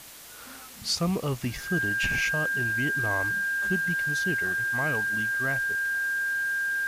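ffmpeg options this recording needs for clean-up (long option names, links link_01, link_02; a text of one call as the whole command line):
ffmpeg -i in.wav -af "bandreject=frequency=1600:width=30,afwtdn=0.0056" out.wav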